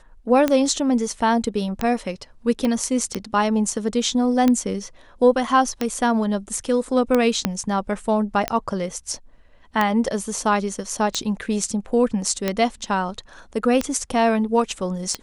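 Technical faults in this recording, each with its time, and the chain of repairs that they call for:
tick 45 rpm -7 dBFS
2.65 pop -12 dBFS
7.45 pop -4 dBFS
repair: de-click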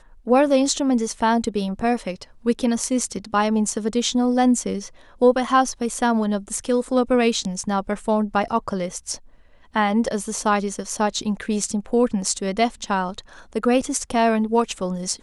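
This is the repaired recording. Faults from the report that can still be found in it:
2.65 pop
7.45 pop

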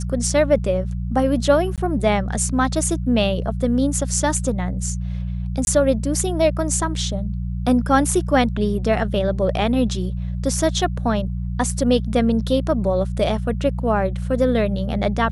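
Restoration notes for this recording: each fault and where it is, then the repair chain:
hum 60 Hz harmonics 3 -25 dBFS
1.76–1.78 gap 17 ms
5.65–5.67 gap 21 ms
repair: de-hum 60 Hz, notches 3; interpolate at 1.76, 17 ms; interpolate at 5.65, 21 ms

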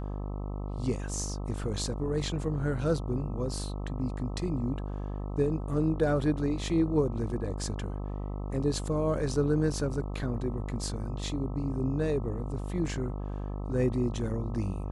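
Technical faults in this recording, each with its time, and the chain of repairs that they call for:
buzz 50 Hz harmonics 26 -35 dBFS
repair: de-hum 50 Hz, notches 26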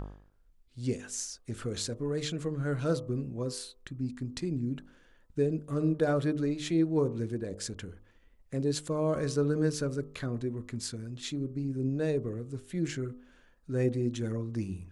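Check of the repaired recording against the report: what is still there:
none

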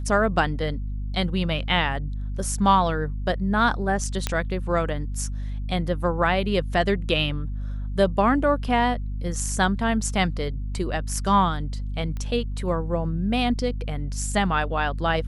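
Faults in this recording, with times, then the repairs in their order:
hum 50 Hz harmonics 5 -29 dBFS
4.27 pop -8 dBFS
12.17 pop -21 dBFS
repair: de-click; de-hum 50 Hz, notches 5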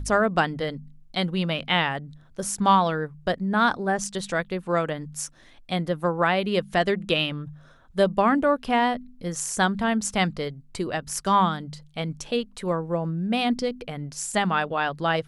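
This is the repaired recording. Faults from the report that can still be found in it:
none

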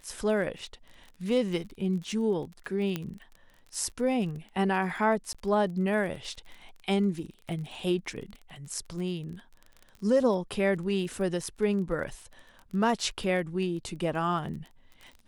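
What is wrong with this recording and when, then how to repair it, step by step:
crackle 30/s -38 dBFS
2.96 pop -17 dBFS
5.33–5.35 gap 16 ms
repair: de-click; interpolate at 5.33, 16 ms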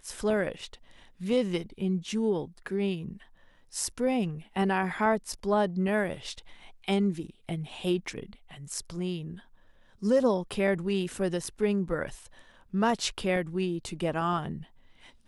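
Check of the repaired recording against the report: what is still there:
none

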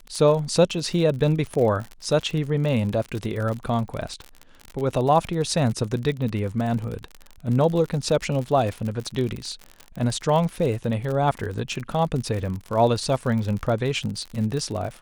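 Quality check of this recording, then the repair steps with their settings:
crackle 53/s -28 dBFS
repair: de-click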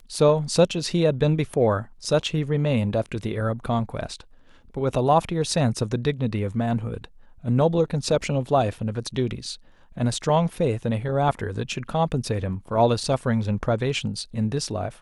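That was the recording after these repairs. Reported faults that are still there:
none

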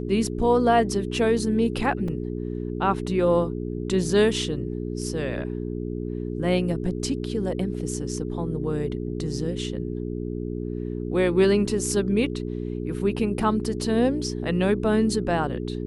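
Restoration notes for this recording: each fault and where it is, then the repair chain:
hum 60 Hz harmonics 7 -30 dBFS
2.08 gap 3.5 ms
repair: de-hum 60 Hz, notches 7; interpolate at 2.08, 3.5 ms

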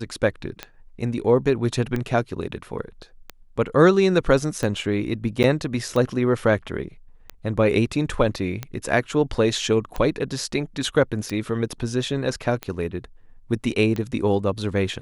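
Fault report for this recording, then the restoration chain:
tick 45 rpm -14 dBFS
5.43–5.44 gap 8.8 ms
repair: de-click; interpolate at 5.43, 8.8 ms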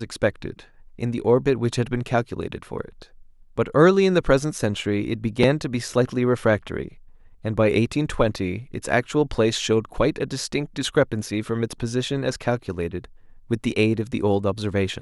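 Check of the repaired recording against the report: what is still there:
none

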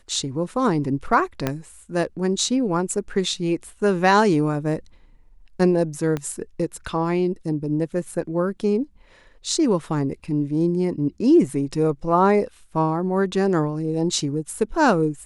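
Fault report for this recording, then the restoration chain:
1.47 pop -8 dBFS
6.17 pop -14 dBFS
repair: de-click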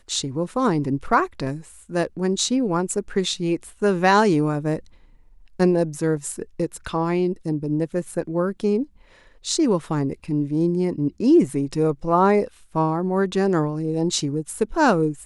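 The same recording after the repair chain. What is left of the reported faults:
1.47 pop
6.17 pop

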